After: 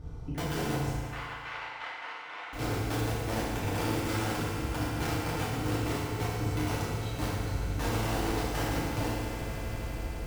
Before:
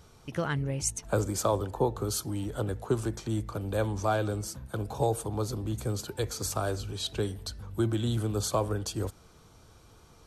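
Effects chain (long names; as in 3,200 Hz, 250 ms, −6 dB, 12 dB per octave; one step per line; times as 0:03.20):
spectral tilt −4 dB per octave
wrap-around overflow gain 15.5 dB
downward compressor 12 to 1, threshold −35 dBFS, peak gain reduction 17 dB
on a send: echo that builds up and dies away 81 ms, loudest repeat 8, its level −16.5 dB
on the sum: amplitude modulation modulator 81 Hz, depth 50%
0:00.95–0:02.53: flat-topped band-pass 1,700 Hz, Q 0.83
feedback delay network reverb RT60 1.8 s, low-frequency decay 0.85×, high-frequency decay 0.8×, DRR −9.5 dB
level −2 dB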